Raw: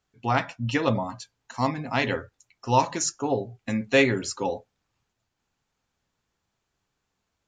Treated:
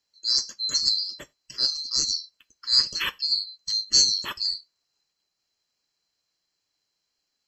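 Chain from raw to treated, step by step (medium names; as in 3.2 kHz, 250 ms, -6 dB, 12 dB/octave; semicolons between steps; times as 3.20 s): split-band scrambler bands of 4 kHz; on a send: reverberation, pre-delay 8 ms, DRR 22.5 dB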